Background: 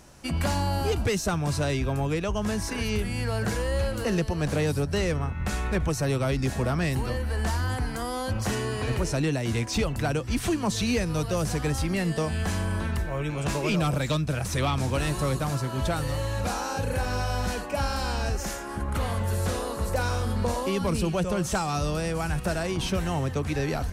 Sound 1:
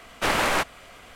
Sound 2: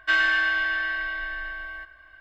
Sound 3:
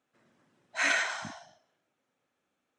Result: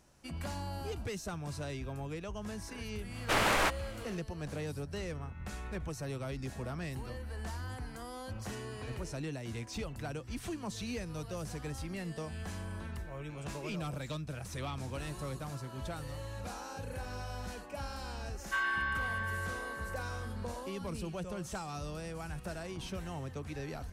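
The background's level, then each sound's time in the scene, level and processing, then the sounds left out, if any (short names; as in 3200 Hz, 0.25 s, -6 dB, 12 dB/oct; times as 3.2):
background -13.5 dB
3.07 add 1 -4.5 dB, fades 0.10 s + soft clip -14.5 dBFS
18.44 add 2 -4 dB + ladder high-pass 950 Hz, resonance 80%
not used: 3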